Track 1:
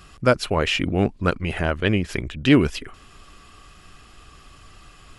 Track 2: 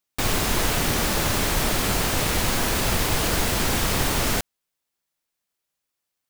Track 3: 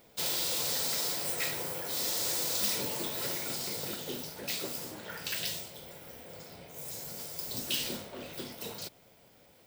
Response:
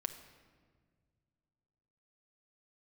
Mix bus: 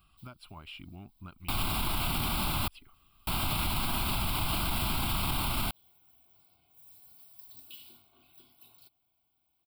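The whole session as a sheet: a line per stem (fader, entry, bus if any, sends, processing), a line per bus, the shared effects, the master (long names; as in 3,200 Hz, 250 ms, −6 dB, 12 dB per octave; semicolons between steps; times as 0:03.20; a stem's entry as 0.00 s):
−17.5 dB, 0.00 s, bus A, no send, no processing
−0.5 dB, 1.30 s, muted 0:02.68–0:03.27, no bus, no send, no processing
−19.0 dB, 0.00 s, bus A, no send, comb filter 2.7 ms, depth 61%; automatic ducking −20 dB, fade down 0.35 s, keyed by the first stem
bus A: 0.0 dB, high-shelf EQ 9,100 Hz +7.5 dB; downward compressor 6 to 1, threshold −40 dBFS, peak gain reduction 12 dB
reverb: not used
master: phaser with its sweep stopped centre 1,800 Hz, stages 6; brickwall limiter −21 dBFS, peak gain reduction 8.5 dB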